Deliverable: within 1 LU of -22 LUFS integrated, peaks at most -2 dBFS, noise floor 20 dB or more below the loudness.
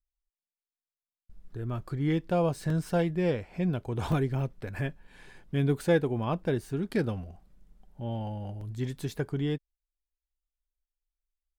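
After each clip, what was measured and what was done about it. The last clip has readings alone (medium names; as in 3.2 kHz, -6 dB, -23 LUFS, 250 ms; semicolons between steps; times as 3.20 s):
dropouts 3; longest dropout 2.7 ms; loudness -31.0 LUFS; peak level -13.0 dBFS; loudness target -22.0 LUFS
-> interpolate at 2.70/4.12/8.61 s, 2.7 ms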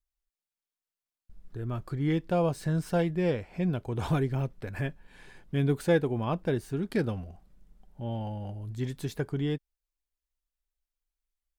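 dropouts 0; loudness -31.0 LUFS; peak level -13.0 dBFS; loudness target -22.0 LUFS
-> trim +9 dB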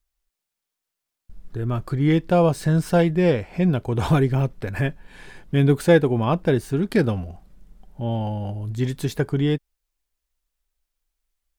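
loudness -22.0 LUFS; peak level -4.0 dBFS; noise floor -84 dBFS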